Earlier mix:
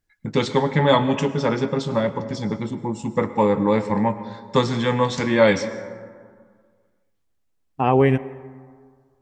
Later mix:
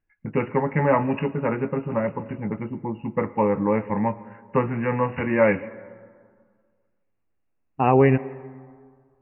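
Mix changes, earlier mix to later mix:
first voice: send −8.5 dB
background +6.5 dB
master: add linear-phase brick-wall low-pass 2,900 Hz

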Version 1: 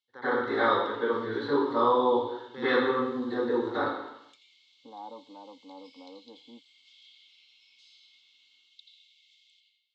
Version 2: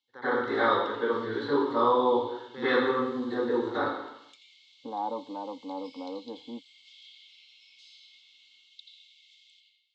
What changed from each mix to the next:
second voice +10.5 dB
background +4.0 dB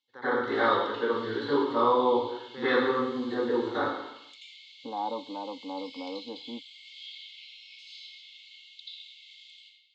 background: send +10.0 dB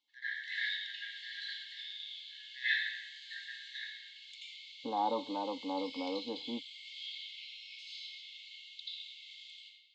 first voice: add linear-phase brick-wall high-pass 1,600 Hz

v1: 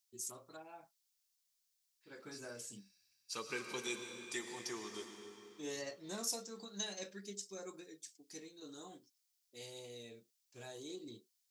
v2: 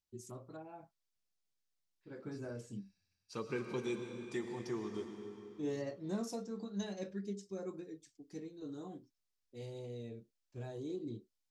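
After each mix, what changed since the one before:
master: add spectral tilt −4.5 dB per octave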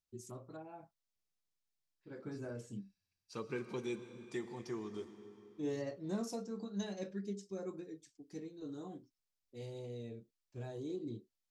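second voice: send −7.0 dB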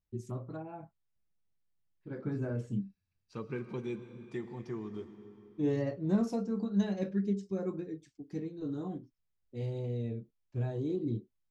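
first voice +5.5 dB
master: add bass and treble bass +8 dB, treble −12 dB

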